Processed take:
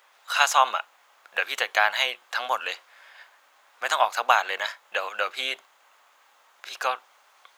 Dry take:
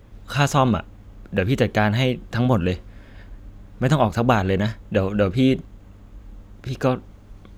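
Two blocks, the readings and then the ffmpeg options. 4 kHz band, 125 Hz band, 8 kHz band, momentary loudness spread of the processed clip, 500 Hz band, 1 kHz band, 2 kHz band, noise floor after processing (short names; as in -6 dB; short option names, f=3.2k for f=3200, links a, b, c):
+3.5 dB, under -40 dB, +3.5 dB, 13 LU, -10.0 dB, +1.5 dB, +3.5 dB, -60 dBFS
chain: -af "highpass=f=820:w=0.5412,highpass=f=820:w=1.3066,volume=3.5dB"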